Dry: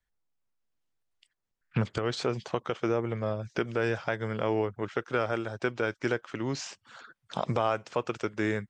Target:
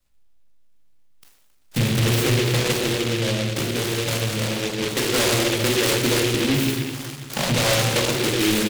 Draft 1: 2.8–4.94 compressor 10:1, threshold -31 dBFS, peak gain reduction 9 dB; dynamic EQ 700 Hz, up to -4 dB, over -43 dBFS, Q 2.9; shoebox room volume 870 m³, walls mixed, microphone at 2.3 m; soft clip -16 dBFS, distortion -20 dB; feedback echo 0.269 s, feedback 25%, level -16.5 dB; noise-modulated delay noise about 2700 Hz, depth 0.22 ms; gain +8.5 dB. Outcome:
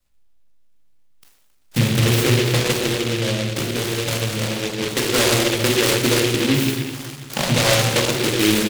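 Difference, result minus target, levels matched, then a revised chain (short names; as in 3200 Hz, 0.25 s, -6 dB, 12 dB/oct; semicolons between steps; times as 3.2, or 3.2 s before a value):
soft clip: distortion -9 dB
2.8–4.94 compressor 10:1, threshold -31 dBFS, peak gain reduction 9 dB; dynamic EQ 700 Hz, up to -4 dB, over -43 dBFS, Q 2.9; shoebox room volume 870 m³, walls mixed, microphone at 2.3 m; soft clip -23.5 dBFS, distortion -11 dB; feedback echo 0.269 s, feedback 25%, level -16.5 dB; noise-modulated delay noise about 2700 Hz, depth 0.22 ms; gain +8.5 dB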